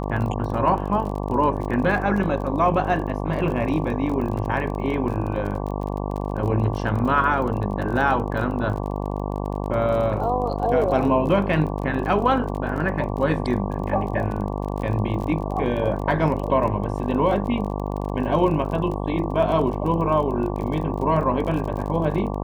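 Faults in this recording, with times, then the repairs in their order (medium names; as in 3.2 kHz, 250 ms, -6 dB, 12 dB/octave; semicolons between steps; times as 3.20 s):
buzz 50 Hz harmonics 23 -27 dBFS
crackle 33 per s -30 dBFS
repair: de-click; de-hum 50 Hz, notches 23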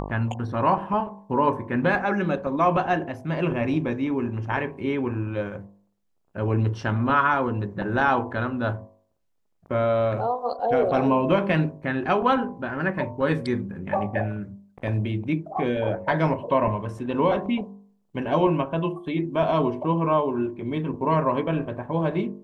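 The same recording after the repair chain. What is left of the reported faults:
nothing left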